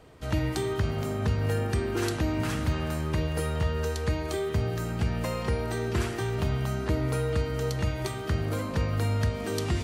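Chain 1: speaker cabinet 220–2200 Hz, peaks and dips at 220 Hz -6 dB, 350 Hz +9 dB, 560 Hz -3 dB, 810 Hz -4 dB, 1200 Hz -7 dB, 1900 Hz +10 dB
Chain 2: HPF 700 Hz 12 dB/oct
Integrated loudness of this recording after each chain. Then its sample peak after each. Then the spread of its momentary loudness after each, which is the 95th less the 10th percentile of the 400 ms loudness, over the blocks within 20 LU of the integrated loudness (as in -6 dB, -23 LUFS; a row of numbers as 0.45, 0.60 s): -31.0, -37.5 LUFS; -14.5, -16.0 dBFS; 5, 3 LU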